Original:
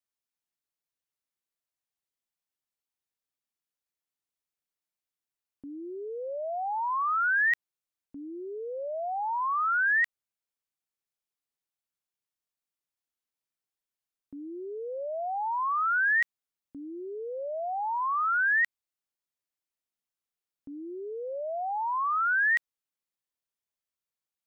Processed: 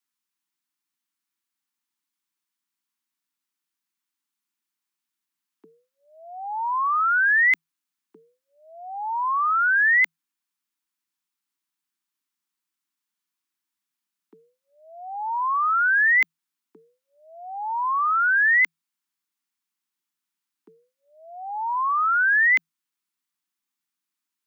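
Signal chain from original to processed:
Chebyshev band-stop filter 170–800 Hz, order 2
frequency shifter +160 Hz
level +7 dB

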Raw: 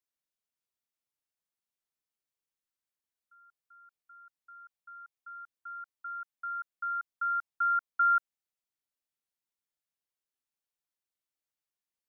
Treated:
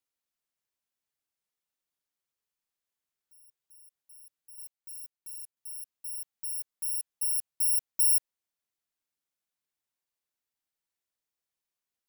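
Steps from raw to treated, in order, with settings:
samples in bit-reversed order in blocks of 32 samples
0:04.58–0:05.57: leveller curve on the samples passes 3
level +1.5 dB

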